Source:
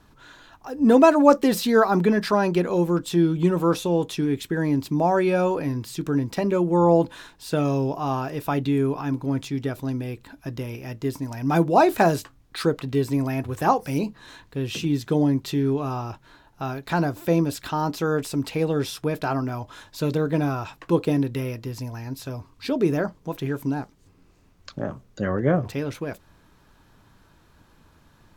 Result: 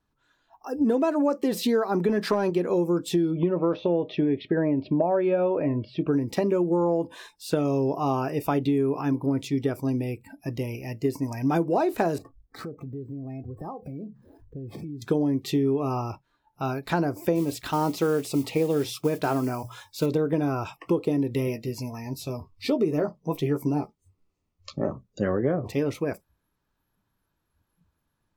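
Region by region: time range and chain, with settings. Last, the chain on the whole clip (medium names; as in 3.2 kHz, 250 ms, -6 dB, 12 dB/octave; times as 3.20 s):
2.09–2.50 s: high-pass 85 Hz + waveshaping leveller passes 1
3.31–6.08 s: low-pass 3.5 kHz 24 dB/octave + peaking EQ 610 Hz +13.5 dB 0.2 oct
12.18–15.02 s: median filter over 15 samples + tilt shelf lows +3.5 dB, about 630 Hz + compression, threshold -34 dBFS
17.35–20.06 s: hum notches 60/120/180 Hz + modulation noise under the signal 19 dB
21.46–24.88 s: band-stop 1.6 kHz, Q 7 + doubling 13 ms -6.5 dB
whole clip: spectral noise reduction 21 dB; dynamic bell 400 Hz, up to +7 dB, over -33 dBFS, Q 0.94; compression 10:1, threshold -20 dBFS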